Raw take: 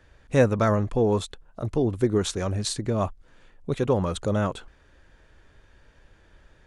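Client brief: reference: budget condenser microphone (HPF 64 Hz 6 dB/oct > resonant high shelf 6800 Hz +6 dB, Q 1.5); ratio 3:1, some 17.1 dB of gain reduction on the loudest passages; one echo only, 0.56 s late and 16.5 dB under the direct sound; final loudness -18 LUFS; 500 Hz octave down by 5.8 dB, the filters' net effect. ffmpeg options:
-af "equalizer=f=500:t=o:g=-7,acompressor=threshold=-42dB:ratio=3,highpass=f=64:p=1,highshelf=f=6.8k:t=q:w=1.5:g=6,aecho=1:1:560:0.15,volume=24dB"

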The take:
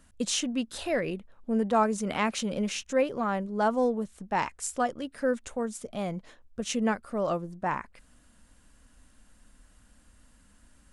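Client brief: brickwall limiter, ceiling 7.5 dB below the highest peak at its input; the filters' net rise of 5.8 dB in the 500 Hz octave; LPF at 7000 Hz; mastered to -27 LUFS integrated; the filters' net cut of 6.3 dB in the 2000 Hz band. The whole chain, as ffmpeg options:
-af "lowpass=7k,equalizer=f=500:t=o:g=7,equalizer=f=2k:t=o:g=-9,volume=2dB,alimiter=limit=-15.5dB:level=0:latency=1"

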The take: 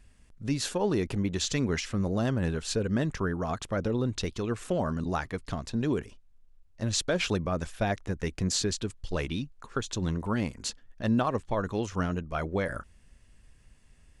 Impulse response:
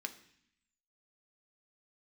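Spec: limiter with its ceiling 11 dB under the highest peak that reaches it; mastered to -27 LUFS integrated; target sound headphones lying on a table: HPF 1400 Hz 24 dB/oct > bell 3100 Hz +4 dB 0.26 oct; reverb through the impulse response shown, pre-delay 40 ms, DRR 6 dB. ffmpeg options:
-filter_complex "[0:a]alimiter=level_in=1.5dB:limit=-24dB:level=0:latency=1,volume=-1.5dB,asplit=2[a][b];[1:a]atrim=start_sample=2205,adelay=40[c];[b][c]afir=irnorm=-1:irlink=0,volume=-5dB[d];[a][d]amix=inputs=2:normalize=0,highpass=f=1.4k:w=0.5412,highpass=f=1.4k:w=1.3066,equalizer=f=3.1k:t=o:w=0.26:g=4,volume=14dB"

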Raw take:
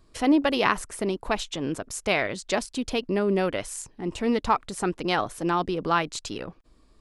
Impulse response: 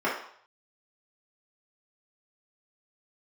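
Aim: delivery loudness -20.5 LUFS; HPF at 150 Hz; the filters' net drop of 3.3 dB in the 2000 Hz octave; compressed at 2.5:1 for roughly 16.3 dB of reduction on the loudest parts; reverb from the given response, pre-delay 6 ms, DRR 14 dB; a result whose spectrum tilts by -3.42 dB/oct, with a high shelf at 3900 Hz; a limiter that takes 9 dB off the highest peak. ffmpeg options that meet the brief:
-filter_complex "[0:a]highpass=150,equalizer=f=2k:t=o:g=-6,highshelf=f=3.9k:g=7,acompressor=threshold=-42dB:ratio=2.5,alimiter=level_in=6.5dB:limit=-24dB:level=0:latency=1,volume=-6.5dB,asplit=2[a][b];[1:a]atrim=start_sample=2205,adelay=6[c];[b][c]afir=irnorm=-1:irlink=0,volume=-27.5dB[d];[a][d]amix=inputs=2:normalize=0,volume=20.5dB"

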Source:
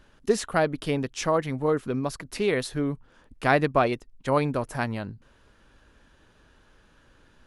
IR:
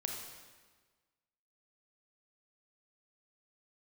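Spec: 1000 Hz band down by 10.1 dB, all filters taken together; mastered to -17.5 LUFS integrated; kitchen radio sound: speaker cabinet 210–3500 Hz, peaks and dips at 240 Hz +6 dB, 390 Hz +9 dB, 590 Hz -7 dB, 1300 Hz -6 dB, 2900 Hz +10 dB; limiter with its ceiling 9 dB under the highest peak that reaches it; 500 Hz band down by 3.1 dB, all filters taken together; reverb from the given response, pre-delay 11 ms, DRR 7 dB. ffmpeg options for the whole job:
-filter_complex "[0:a]equalizer=f=500:t=o:g=-5.5,equalizer=f=1k:t=o:g=-9,alimiter=limit=-20.5dB:level=0:latency=1,asplit=2[a][b];[1:a]atrim=start_sample=2205,adelay=11[c];[b][c]afir=irnorm=-1:irlink=0,volume=-8dB[d];[a][d]amix=inputs=2:normalize=0,highpass=210,equalizer=f=240:t=q:w=4:g=6,equalizer=f=390:t=q:w=4:g=9,equalizer=f=590:t=q:w=4:g=-7,equalizer=f=1.3k:t=q:w=4:g=-6,equalizer=f=2.9k:t=q:w=4:g=10,lowpass=f=3.5k:w=0.5412,lowpass=f=3.5k:w=1.3066,volume=13.5dB"

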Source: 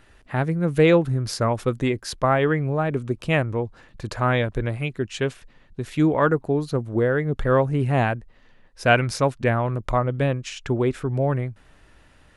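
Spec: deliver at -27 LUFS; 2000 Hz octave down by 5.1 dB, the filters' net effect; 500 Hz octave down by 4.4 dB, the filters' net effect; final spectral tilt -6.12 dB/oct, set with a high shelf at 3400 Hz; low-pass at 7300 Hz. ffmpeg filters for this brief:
-af "lowpass=7.3k,equalizer=f=500:t=o:g=-5,equalizer=f=2k:t=o:g=-8.5,highshelf=f=3.4k:g=6,volume=-2dB"

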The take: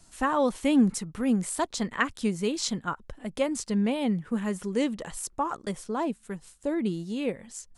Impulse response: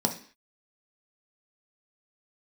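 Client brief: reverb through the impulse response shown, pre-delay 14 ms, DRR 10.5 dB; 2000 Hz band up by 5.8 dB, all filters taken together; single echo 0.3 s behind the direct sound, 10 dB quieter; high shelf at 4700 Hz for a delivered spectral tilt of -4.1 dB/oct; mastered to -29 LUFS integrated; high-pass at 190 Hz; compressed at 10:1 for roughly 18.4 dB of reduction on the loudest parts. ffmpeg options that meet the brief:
-filter_complex "[0:a]highpass=190,equalizer=f=2k:t=o:g=7.5,highshelf=f=4.7k:g=-3.5,acompressor=threshold=-34dB:ratio=10,aecho=1:1:300:0.316,asplit=2[a][b];[1:a]atrim=start_sample=2205,adelay=14[c];[b][c]afir=irnorm=-1:irlink=0,volume=-19.5dB[d];[a][d]amix=inputs=2:normalize=0,volume=8dB"

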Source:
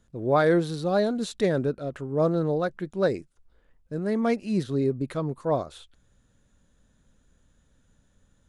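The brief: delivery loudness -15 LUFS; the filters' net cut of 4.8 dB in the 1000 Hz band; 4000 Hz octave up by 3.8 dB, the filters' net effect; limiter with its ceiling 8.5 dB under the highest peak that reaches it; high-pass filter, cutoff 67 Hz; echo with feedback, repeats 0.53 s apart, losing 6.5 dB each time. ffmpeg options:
-af "highpass=67,equalizer=f=1k:t=o:g=-7.5,equalizer=f=4k:t=o:g=4.5,alimiter=limit=-20.5dB:level=0:latency=1,aecho=1:1:530|1060|1590|2120|2650|3180:0.473|0.222|0.105|0.0491|0.0231|0.0109,volume=14.5dB"

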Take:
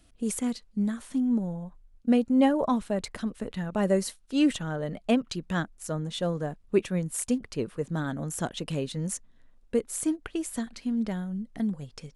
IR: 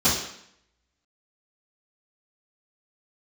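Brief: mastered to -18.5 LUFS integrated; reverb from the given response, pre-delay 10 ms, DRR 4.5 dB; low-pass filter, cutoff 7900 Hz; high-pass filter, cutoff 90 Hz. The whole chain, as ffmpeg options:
-filter_complex "[0:a]highpass=90,lowpass=7.9k,asplit=2[a][b];[1:a]atrim=start_sample=2205,adelay=10[c];[b][c]afir=irnorm=-1:irlink=0,volume=-21dB[d];[a][d]amix=inputs=2:normalize=0,volume=7dB"

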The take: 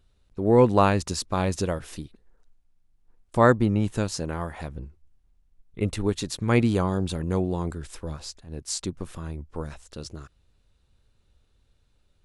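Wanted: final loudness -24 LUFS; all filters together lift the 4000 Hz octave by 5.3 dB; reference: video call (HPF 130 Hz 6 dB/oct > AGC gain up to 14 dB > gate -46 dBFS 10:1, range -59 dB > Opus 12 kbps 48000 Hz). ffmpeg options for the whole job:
-af "highpass=f=130:p=1,equalizer=f=4k:t=o:g=6.5,dynaudnorm=m=14dB,agate=range=-59dB:threshold=-46dB:ratio=10,volume=2dB" -ar 48000 -c:a libopus -b:a 12k

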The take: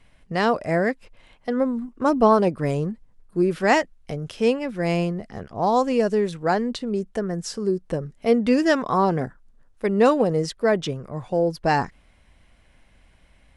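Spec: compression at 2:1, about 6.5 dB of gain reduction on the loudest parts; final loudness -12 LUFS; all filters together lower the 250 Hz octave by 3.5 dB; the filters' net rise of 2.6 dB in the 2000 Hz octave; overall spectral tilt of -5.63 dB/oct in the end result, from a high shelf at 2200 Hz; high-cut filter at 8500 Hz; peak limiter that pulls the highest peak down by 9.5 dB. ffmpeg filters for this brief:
-af "lowpass=8.5k,equalizer=f=250:t=o:g=-4.5,equalizer=f=2k:t=o:g=7,highshelf=f=2.2k:g=-8,acompressor=threshold=-25dB:ratio=2,volume=19.5dB,alimiter=limit=-2dB:level=0:latency=1"

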